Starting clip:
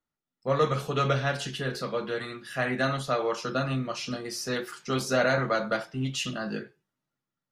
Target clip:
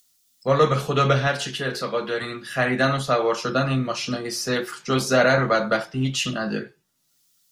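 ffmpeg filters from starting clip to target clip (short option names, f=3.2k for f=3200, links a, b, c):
-filter_complex "[0:a]asettb=1/sr,asplit=3[a][b][c];[a]atrim=end=1.274[d];[b]atrim=start=1.27:end=2.22,asetpts=PTS-STARTPTS,afade=t=in:d=0.004:c=qsin,afade=t=out:st=0.946:d=0.004:c=qsin,lowshelf=f=230:g=-7.5[e];[c]atrim=start=2.216[f];[d][e]acrossfade=d=0.004:c1=hsin:c2=qsin[g];[g][f]acrossfade=d=0.004:c1=qsin:c2=hsin,acrossover=split=350|3800[h][i][j];[j]acompressor=mode=upward:threshold=-49dB:ratio=2.5[k];[h][i][k]amix=inputs=3:normalize=0,volume=6.5dB"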